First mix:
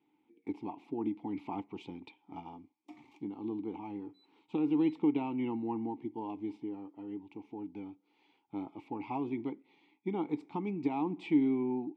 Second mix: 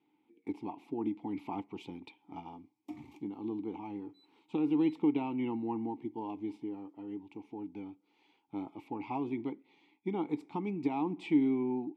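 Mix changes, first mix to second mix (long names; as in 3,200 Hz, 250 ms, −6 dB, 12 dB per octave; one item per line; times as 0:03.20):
background: remove high-pass filter 710 Hz 6 dB per octave
master: remove high-frequency loss of the air 55 metres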